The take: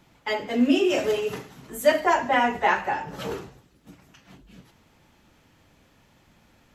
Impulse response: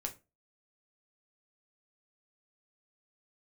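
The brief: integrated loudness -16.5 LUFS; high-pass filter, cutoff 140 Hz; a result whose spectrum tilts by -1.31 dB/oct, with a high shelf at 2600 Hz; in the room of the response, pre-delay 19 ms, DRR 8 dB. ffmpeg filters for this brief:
-filter_complex "[0:a]highpass=140,highshelf=f=2.6k:g=4,asplit=2[a][b];[1:a]atrim=start_sample=2205,adelay=19[c];[b][c]afir=irnorm=-1:irlink=0,volume=-7.5dB[d];[a][d]amix=inputs=2:normalize=0,volume=6dB"

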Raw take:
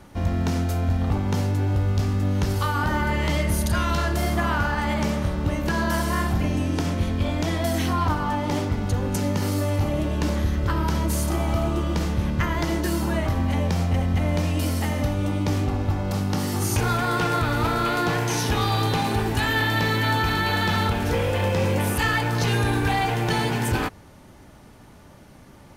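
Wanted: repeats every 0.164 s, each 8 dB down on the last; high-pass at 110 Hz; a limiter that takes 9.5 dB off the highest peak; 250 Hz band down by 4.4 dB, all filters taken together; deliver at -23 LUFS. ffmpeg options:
-af "highpass=110,equalizer=f=250:t=o:g=-5.5,alimiter=limit=-21.5dB:level=0:latency=1,aecho=1:1:164|328|492|656|820:0.398|0.159|0.0637|0.0255|0.0102,volume=6dB"

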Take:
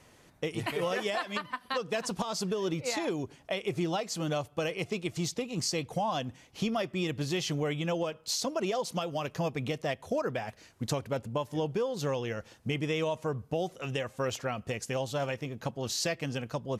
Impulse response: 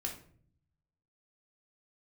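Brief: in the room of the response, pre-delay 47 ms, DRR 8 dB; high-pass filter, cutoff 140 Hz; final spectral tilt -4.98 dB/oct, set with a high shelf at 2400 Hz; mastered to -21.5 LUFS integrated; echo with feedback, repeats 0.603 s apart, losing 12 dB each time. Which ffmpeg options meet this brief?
-filter_complex "[0:a]highpass=140,highshelf=f=2.4k:g=-5,aecho=1:1:603|1206|1809:0.251|0.0628|0.0157,asplit=2[a][b];[1:a]atrim=start_sample=2205,adelay=47[c];[b][c]afir=irnorm=-1:irlink=0,volume=-8.5dB[d];[a][d]amix=inputs=2:normalize=0,volume=12dB"

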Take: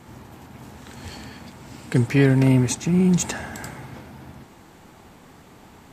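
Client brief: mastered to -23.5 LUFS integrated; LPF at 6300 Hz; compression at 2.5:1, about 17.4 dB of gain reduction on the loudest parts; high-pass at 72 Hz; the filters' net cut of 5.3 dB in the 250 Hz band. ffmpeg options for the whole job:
-af "highpass=72,lowpass=6.3k,equalizer=f=250:t=o:g=-7.5,acompressor=threshold=-44dB:ratio=2.5,volume=19.5dB"

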